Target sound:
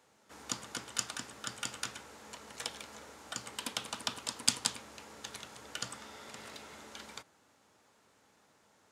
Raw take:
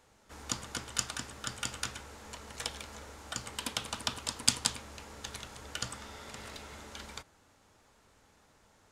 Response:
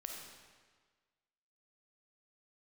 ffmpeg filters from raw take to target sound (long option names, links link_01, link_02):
-af "highpass=150,volume=-2dB"